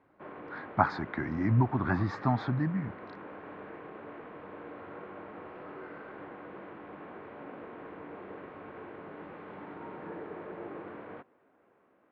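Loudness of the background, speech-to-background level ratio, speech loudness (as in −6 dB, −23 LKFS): −45.5 LKFS, 15.5 dB, −30.0 LKFS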